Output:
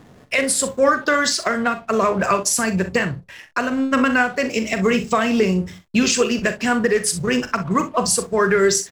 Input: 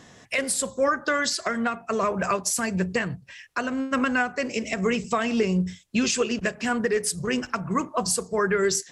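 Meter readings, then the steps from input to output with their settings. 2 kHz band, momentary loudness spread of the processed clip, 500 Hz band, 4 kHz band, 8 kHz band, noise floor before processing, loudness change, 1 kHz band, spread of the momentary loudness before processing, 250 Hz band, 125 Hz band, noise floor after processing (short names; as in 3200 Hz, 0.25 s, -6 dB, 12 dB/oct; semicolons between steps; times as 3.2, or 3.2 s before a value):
+6.5 dB, 6 LU, +6.5 dB, +6.0 dB, +6.0 dB, -51 dBFS, +6.0 dB, +6.5 dB, 5 LU, +6.0 dB, +5.0 dB, -48 dBFS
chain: backlash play -42.5 dBFS; early reflections 41 ms -11 dB, 63 ms -14 dB; gain +6 dB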